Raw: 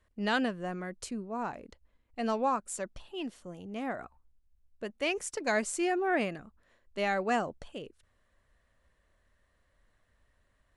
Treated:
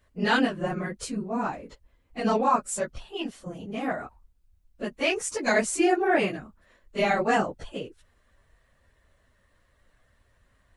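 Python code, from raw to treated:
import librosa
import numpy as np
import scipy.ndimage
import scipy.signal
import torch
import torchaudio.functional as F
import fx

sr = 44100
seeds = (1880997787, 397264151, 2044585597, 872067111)

y = fx.phase_scramble(x, sr, seeds[0], window_ms=50)
y = F.gain(torch.from_numpy(y), 6.5).numpy()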